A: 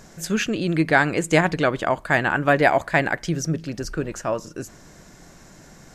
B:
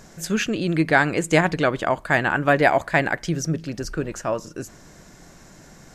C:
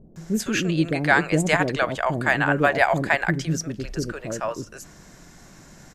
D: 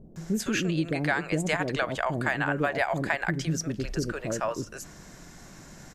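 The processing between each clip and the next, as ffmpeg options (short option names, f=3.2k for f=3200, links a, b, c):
-af anull
-filter_complex "[0:a]acrossover=split=510[a][b];[b]adelay=160[c];[a][c]amix=inputs=2:normalize=0"
-af "acompressor=threshold=-24dB:ratio=4"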